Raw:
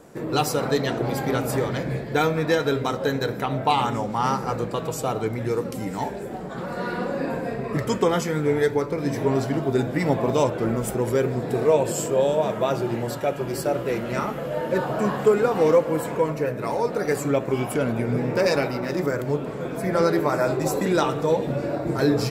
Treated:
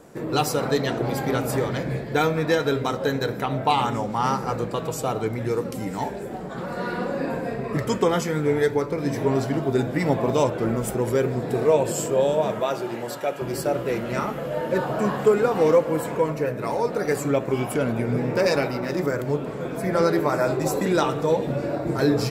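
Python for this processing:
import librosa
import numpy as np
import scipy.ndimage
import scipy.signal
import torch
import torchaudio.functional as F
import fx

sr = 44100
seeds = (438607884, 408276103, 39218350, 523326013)

y = fx.highpass(x, sr, hz=400.0, slope=6, at=(12.6, 13.42))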